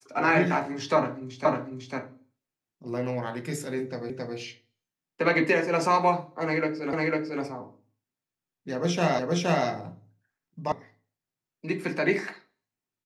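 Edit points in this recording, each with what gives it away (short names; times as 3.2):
1.45 repeat of the last 0.5 s
4.1 repeat of the last 0.27 s
6.93 repeat of the last 0.5 s
9.19 repeat of the last 0.47 s
10.72 sound cut off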